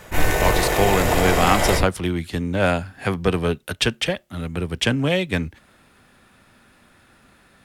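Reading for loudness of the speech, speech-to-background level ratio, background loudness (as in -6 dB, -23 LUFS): -22.5 LUFS, -1.5 dB, -21.0 LUFS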